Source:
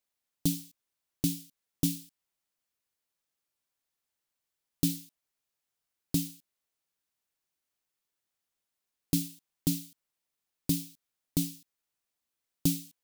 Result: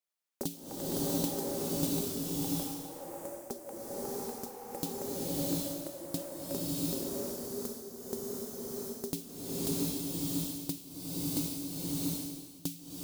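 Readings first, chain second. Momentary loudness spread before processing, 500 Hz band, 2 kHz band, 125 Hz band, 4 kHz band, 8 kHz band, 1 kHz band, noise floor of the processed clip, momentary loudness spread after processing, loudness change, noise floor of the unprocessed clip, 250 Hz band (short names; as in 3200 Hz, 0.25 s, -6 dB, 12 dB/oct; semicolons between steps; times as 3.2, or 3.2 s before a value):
11 LU, +15.5 dB, +4.0 dB, -3.0 dB, +1.5 dB, +2.0 dB, n/a, -50 dBFS, 9 LU, -2.5 dB, under -85 dBFS, 0.0 dB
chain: HPF 210 Hz 6 dB/oct; transient shaper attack +10 dB, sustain -3 dB; limiter -11.5 dBFS, peak gain reduction 7 dB; compressor 2.5:1, threshold -28 dBFS, peak gain reduction 6 dB; echoes that change speed 91 ms, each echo +6 st, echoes 3; bloom reverb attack 0.73 s, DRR -9 dB; gain -6 dB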